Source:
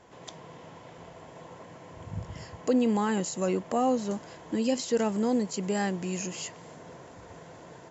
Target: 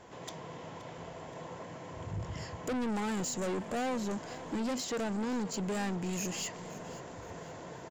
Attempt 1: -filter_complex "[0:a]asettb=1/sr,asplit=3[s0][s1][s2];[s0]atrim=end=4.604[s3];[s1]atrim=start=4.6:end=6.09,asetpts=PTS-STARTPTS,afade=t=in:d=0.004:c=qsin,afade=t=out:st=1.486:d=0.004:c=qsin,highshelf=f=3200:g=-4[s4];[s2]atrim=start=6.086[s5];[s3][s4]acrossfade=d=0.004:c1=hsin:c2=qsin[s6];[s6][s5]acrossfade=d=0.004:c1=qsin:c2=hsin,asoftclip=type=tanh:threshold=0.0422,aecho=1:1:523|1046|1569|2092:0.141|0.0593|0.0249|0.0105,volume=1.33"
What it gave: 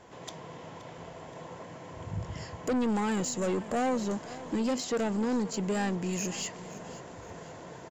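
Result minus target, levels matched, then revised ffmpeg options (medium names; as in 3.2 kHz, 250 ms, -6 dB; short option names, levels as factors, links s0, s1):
saturation: distortion -4 dB
-filter_complex "[0:a]asettb=1/sr,asplit=3[s0][s1][s2];[s0]atrim=end=4.604[s3];[s1]atrim=start=4.6:end=6.09,asetpts=PTS-STARTPTS,afade=t=in:d=0.004:c=qsin,afade=t=out:st=1.486:d=0.004:c=qsin,highshelf=f=3200:g=-4[s4];[s2]atrim=start=6.086[s5];[s3][s4]acrossfade=d=0.004:c1=hsin:c2=qsin[s6];[s6][s5]acrossfade=d=0.004:c1=qsin:c2=hsin,asoftclip=type=tanh:threshold=0.02,aecho=1:1:523|1046|1569|2092:0.141|0.0593|0.0249|0.0105,volume=1.33"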